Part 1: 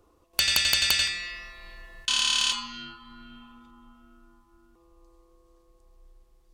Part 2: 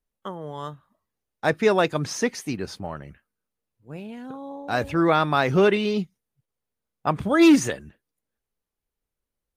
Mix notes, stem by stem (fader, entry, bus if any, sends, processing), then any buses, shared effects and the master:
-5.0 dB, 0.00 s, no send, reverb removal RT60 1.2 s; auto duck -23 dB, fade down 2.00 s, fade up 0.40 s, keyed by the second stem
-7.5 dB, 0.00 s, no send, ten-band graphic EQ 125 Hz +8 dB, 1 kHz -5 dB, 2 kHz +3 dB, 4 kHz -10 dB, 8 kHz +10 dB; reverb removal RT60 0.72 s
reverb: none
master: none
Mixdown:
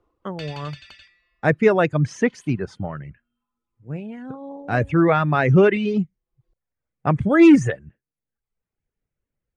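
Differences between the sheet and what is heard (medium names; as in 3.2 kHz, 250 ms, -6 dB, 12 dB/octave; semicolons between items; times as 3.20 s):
stem 2 -7.5 dB -> +4.0 dB; master: extra low-pass 2.9 kHz 12 dB/octave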